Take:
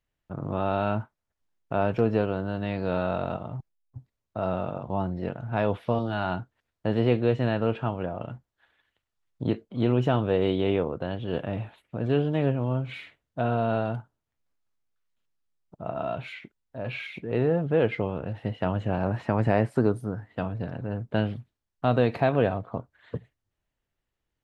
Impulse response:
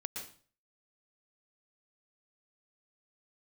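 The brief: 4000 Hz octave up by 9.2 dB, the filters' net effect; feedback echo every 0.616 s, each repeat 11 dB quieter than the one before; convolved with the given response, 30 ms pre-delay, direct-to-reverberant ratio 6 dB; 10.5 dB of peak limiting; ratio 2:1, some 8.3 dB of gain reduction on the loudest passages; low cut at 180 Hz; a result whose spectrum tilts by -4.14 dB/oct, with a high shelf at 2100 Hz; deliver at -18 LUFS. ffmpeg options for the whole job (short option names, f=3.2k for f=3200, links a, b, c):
-filter_complex "[0:a]highpass=180,highshelf=f=2.1k:g=4.5,equalizer=f=4k:t=o:g=8.5,acompressor=threshold=-33dB:ratio=2,alimiter=level_in=2dB:limit=-24dB:level=0:latency=1,volume=-2dB,aecho=1:1:616|1232|1848:0.282|0.0789|0.0221,asplit=2[a][b];[1:a]atrim=start_sample=2205,adelay=30[c];[b][c]afir=irnorm=-1:irlink=0,volume=-5.5dB[d];[a][d]amix=inputs=2:normalize=0,volume=19dB"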